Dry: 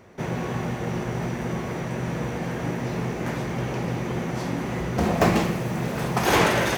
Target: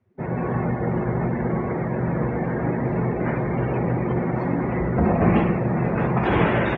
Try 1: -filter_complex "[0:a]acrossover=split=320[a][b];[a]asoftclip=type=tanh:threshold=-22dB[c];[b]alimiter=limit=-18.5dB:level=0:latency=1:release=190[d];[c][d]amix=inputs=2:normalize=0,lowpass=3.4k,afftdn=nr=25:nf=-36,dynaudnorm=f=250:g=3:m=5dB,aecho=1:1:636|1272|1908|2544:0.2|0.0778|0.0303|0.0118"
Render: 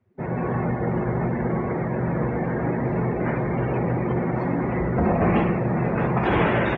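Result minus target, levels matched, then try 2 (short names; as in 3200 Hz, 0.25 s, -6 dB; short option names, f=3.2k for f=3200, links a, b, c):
soft clip: distortion +16 dB
-filter_complex "[0:a]acrossover=split=320[a][b];[a]asoftclip=type=tanh:threshold=-10.5dB[c];[b]alimiter=limit=-18.5dB:level=0:latency=1:release=190[d];[c][d]amix=inputs=2:normalize=0,lowpass=3.4k,afftdn=nr=25:nf=-36,dynaudnorm=f=250:g=3:m=5dB,aecho=1:1:636|1272|1908|2544:0.2|0.0778|0.0303|0.0118"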